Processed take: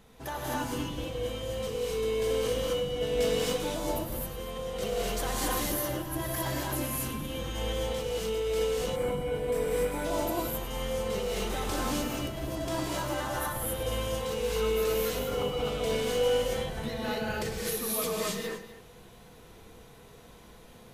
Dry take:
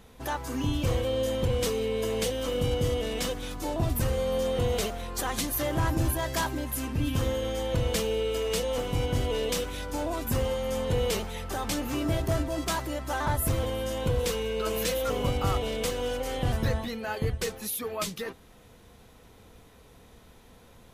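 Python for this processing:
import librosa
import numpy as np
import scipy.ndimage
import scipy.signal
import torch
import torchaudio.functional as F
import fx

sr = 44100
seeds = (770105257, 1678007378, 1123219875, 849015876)

y = fx.over_compress(x, sr, threshold_db=-30.0, ratio=-0.5)
y = fx.peak_eq(y, sr, hz=79.0, db=-8.0, octaves=0.3)
y = fx.echo_multitap(y, sr, ms=(102, 247), db=(-12.5, -15.5))
y = fx.rev_gated(y, sr, seeds[0], gate_ms=290, shape='rising', drr_db=-5.5)
y = fx.spec_box(y, sr, start_s=8.96, length_s=1.09, low_hz=2500.0, high_hz=7400.0, gain_db=-10)
y = y * librosa.db_to_amplitude(-6.5)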